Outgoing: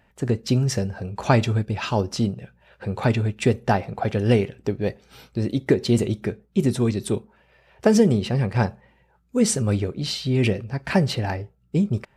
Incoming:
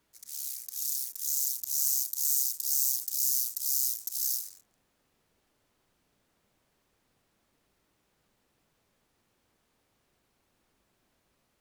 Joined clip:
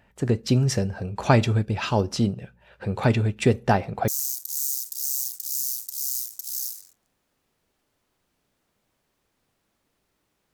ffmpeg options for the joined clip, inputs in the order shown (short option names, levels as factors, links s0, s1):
-filter_complex "[0:a]apad=whole_dur=10.53,atrim=end=10.53,atrim=end=4.082[s0];[1:a]atrim=start=1.758:end=8.21[s1];[s0][s1]acrossfade=d=0.004:c1=hsin:c2=hsin"